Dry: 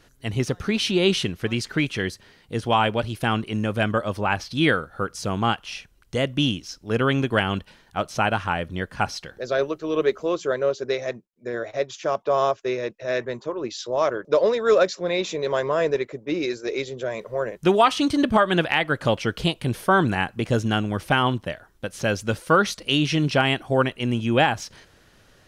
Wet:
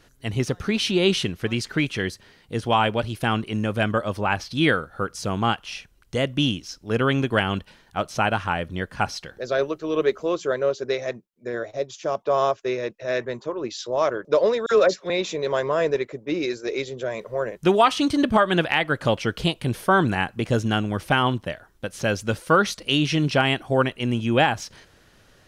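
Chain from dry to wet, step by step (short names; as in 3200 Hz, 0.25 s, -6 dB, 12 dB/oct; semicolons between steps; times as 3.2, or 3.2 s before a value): 11.65–12.27 bell 1700 Hz -11.5 dB -> -2 dB 1.9 oct; 14.66–15.1 dispersion lows, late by 55 ms, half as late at 1700 Hz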